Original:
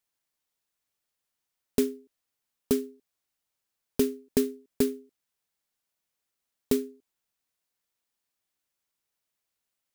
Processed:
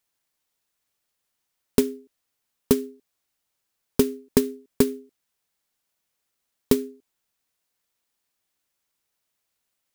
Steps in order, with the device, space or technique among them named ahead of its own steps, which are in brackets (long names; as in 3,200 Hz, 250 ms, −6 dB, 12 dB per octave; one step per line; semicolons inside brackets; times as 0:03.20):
drum-bus smash (transient designer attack +8 dB, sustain 0 dB; downward compressor, threshold −17 dBFS, peak gain reduction 6.5 dB; soft clipping −9.5 dBFS, distortion −15 dB)
level +5 dB